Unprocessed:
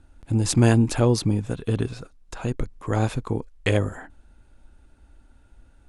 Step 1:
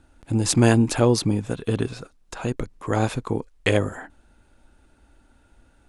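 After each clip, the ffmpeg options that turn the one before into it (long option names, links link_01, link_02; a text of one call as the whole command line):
ffmpeg -i in.wav -af "lowshelf=frequency=110:gain=-9.5,volume=3dB" out.wav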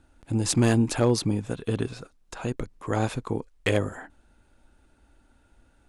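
ffmpeg -i in.wav -af "asoftclip=type=hard:threshold=-9.5dB,volume=-3.5dB" out.wav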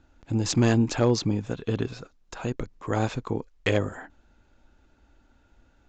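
ffmpeg -i in.wav -af "aresample=16000,aresample=44100" out.wav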